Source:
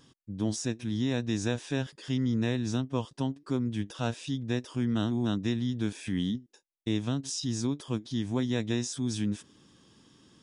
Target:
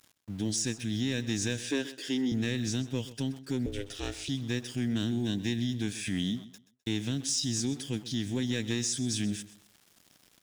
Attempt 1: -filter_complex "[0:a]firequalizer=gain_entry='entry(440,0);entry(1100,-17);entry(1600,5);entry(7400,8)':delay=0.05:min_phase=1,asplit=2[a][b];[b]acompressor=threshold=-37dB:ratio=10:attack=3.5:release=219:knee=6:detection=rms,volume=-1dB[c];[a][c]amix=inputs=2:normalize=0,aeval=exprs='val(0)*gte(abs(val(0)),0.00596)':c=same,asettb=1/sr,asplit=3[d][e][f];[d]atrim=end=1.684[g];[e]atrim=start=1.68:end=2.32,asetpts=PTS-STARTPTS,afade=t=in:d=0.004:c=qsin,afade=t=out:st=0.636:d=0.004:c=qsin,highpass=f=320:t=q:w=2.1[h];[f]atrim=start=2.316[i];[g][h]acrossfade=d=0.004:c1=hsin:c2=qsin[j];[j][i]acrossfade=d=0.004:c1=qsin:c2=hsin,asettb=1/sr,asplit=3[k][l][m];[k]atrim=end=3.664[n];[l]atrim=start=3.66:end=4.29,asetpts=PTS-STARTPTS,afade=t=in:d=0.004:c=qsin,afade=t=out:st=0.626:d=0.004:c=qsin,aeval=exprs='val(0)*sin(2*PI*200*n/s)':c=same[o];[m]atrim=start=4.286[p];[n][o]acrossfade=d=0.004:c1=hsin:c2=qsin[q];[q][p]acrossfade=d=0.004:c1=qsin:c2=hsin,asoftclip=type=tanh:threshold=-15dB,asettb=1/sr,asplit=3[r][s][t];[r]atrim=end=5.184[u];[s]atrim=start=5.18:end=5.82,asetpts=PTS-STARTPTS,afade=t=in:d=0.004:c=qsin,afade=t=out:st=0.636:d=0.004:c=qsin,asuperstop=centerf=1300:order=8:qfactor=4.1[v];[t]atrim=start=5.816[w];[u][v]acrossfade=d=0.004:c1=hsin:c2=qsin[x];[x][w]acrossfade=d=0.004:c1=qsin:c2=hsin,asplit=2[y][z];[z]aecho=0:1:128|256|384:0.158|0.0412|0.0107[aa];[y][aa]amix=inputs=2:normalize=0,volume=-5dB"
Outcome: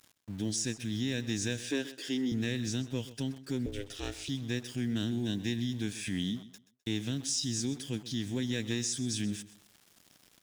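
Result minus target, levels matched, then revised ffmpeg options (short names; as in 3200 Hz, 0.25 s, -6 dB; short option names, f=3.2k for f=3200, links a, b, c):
compressor: peak gain reduction +11 dB
-filter_complex "[0:a]firequalizer=gain_entry='entry(440,0);entry(1100,-17);entry(1600,5);entry(7400,8)':delay=0.05:min_phase=1,asplit=2[a][b];[b]acompressor=threshold=-25dB:ratio=10:attack=3.5:release=219:knee=6:detection=rms,volume=-1dB[c];[a][c]amix=inputs=2:normalize=0,aeval=exprs='val(0)*gte(abs(val(0)),0.00596)':c=same,asettb=1/sr,asplit=3[d][e][f];[d]atrim=end=1.684[g];[e]atrim=start=1.68:end=2.32,asetpts=PTS-STARTPTS,afade=t=in:d=0.004:c=qsin,afade=t=out:st=0.636:d=0.004:c=qsin,highpass=f=320:t=q:w=2.1[h];[f]atrim=start=2.316[i];[g][h]acrossfade=d=0.004:c1=hsin:c2=qsin[j];[j][i]acrossfade=d=0.004:c1=qsin:c2=hsin,asettb=1/sr,asplit=3[k][l][m];[k]atrim=end=3.664[n];[l]atrim=start=3.66:end=4.29,asetpts=PTS-STARTPTS,afade=t=in:d=0.004:c=qsin,afade=t=out:st=0.626:d=0.004:c=qsin,aeval=exprs='val(0)*sin(2*PI*200*n/s)':c=same[o];[m]atrim=start=4.286[p];[n][o]acrossfade=d=0.004:c1=hsin:c2=qsin[q];[q][p]acrossfade=d=0.004:c1=qsin:c2=hsin,asoftclip=type=tanh:threshold=-15dB,asettb=1/sr,asplit=3[r][s][t];[r]atrim=end=5.184[u];[s]atrim=start=5.18:end=5.82,asetpts=PTS-STARTPTS,afade=t=in:d=0.004:c=qsin,afade=t=out:st=0.636:d=0.004:c=qsin,asuperstop=centerf=1300:order=8:qfactor=4.1[v];[t]atrim=start=5.816[w];[u][v]acrossfade=d=0.004:c1=hsin:c2=qsin[x];[x][w]acrossfade=d=0.004:c1=qsin:c2=hsin,asplit=2[y][z];[z]aecho=0:1:128|256|384:0.158|0.0412|0.0107[aa];[y][aa]amix=inputs=2:normalize=0,volume=-5dB"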